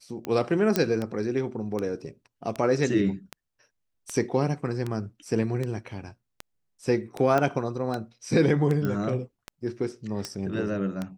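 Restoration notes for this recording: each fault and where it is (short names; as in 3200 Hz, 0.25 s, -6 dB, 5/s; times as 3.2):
tick 78 rpm -17 dBFS
0.76 pop -8 dBFS
7.38 pop -13 dBFS
8.85 pop -18 dBFS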